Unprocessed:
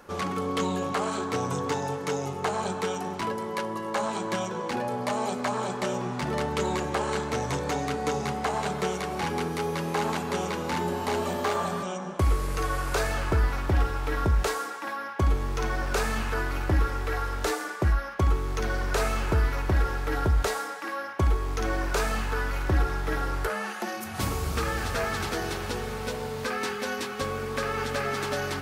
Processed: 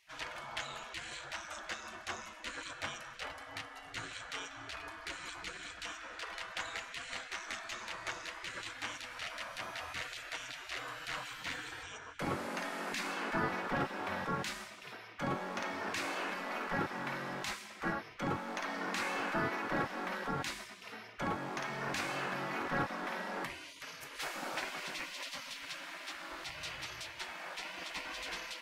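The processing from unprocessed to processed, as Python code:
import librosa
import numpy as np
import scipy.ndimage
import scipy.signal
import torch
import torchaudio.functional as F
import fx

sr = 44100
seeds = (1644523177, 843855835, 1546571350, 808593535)

y = fx.lowpass(x, sr, hz=1800.0, slope=6)
y = fx.spec_gate(y, sr, threshold_db=-20, keep='weak')
y = y * 10.0 ** (2.0 / 20.0)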